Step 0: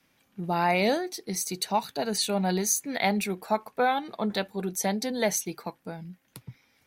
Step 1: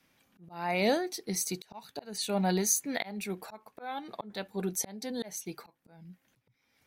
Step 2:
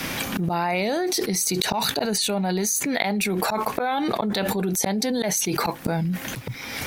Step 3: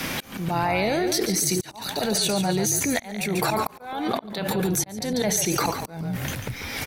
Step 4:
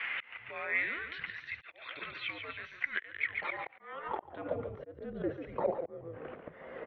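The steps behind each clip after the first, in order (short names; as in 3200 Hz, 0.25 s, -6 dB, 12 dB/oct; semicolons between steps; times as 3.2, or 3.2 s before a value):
auto swell 0.416 s; gain -1.5 dB
fast leveller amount 100%
frequency-shifting echo 0.142 s, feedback 42%, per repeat -41 Hz, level -8 dB; auto swell 0.38 s
mistuned SSB -290 Hz 180–3200 Hz; band-pass sweep 2200 Hz -> 490 Hz, 3.74–4.59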